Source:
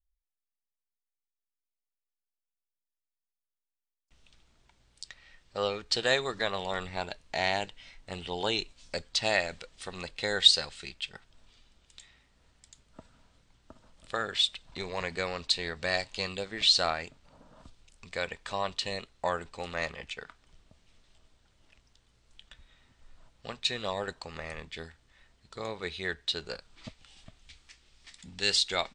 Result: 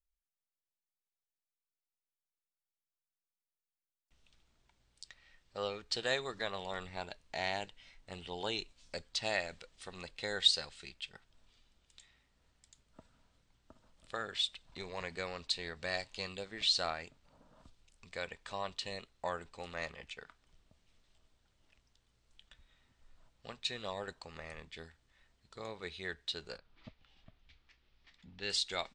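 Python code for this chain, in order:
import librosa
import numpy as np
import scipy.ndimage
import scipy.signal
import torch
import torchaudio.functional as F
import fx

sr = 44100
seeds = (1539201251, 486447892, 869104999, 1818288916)

y = fx.air_absorb(x, sr, metres=210.0, at=(26.58, 28.5))
y = F.gain(torch.from_numpy(y), -7.5).numpy()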